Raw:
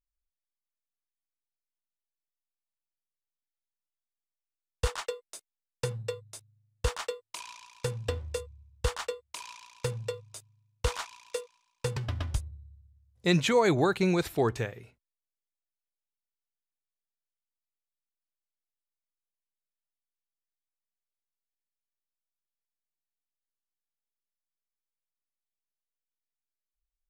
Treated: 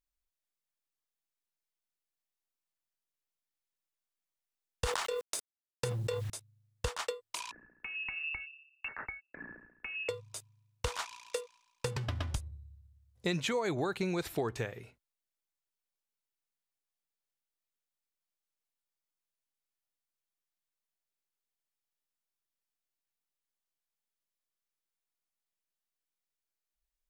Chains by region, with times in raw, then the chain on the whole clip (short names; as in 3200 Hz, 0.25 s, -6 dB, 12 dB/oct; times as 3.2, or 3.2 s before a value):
4.84–6.3 G.711 law mismatch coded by A + sustainer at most 24 dB/s
7.51–10.09 compressor 20:1, threshold -37 dBFS + inverted band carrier 2700 Hz + three-band expander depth 100%
whole clip: low shelf 190 Hz -3.5 dB; compressor 5:1, threshold -32 dBFS; gain +1.5 dB